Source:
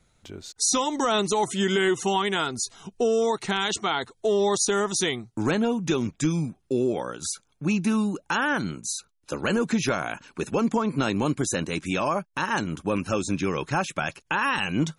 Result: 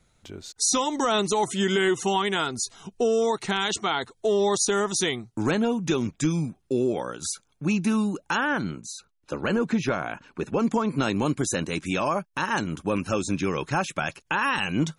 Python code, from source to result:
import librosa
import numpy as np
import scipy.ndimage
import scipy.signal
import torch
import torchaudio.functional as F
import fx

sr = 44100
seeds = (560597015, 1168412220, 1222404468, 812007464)

y = fx.lowpass(x, sr, hz=fx.line((8.4, 3400.0), (10.59, 2000.0)), slope=6, at=(8.4, 10.59), fade=0.02)